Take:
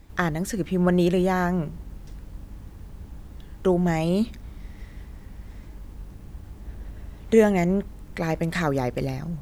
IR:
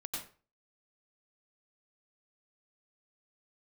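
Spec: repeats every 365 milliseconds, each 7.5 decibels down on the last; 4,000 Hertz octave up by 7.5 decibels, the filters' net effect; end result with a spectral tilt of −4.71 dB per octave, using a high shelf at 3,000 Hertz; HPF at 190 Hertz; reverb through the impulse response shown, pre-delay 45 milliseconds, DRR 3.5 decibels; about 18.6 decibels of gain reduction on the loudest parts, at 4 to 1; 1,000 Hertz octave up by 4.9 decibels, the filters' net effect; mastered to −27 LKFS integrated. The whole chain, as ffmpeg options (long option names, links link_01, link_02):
-filter_complex "[0:a]highpass=190,equalizer=frequency=1000:width_type=o:gain=6,highshelf=frequency=3000:gain=5.5,equalizer=frequency=4000:width_type=o:gain=5,acompressor=threshold=-34dB:ratio=4,aecho=1:1:365|730|1095|1460|1825:0.422|0.177|0.0744|0.0312|0.0131,asplit=2[link_01][link_02];[1:a]atrim=start_sample=2205,adelay=45[link_03];[link_02][link_03]afir=irnorm=-1:irlink=0,volume=-3.5dB[link_04];[link_01][link_04]amix=inputs=2:normalize=0,volume=9dB"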